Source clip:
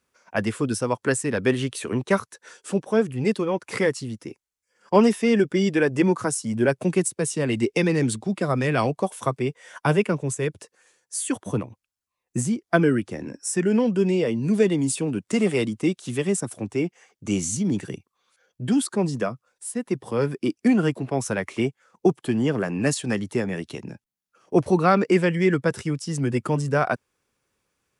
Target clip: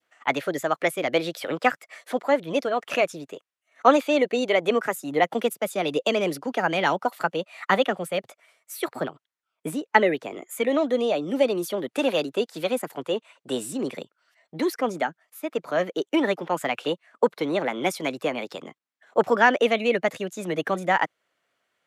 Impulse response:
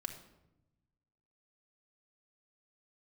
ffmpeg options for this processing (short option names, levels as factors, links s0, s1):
-af "adynamicequalizer=threshold=0.0126:dfrequency=1100:dqfactor=0.8:tfrequency=1100:tqfactor=0.8:attack=5:release=100:ratio=0.375:range=2:mode=cutabove:tftype=bell,bandpass=f=1100:t=q:w=0.57:csg=0,asetrate=56448,aresample=44100,volume=1.68"